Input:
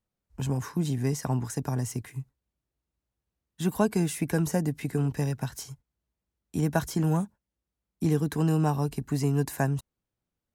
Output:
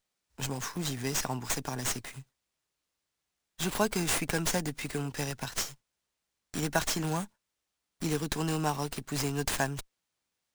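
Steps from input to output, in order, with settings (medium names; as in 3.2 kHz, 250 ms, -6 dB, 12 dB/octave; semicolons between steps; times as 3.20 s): tilt EQ +3.5 dB/octave; sliding maximum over 3 samples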